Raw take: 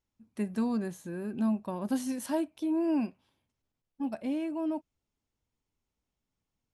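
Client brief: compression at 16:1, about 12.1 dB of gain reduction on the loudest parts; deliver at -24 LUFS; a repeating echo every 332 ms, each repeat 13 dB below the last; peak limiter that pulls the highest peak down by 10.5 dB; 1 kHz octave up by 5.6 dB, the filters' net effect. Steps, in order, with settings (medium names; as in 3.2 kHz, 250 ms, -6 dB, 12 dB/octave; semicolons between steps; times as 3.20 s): peaking EQ 1 kHz +6.5 dB; compression 16:1, threshold -36 dBFS; peak limiter -38 dBFS; feedback delay 332 ms, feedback 22%, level -13 dB; trim +21.5 dB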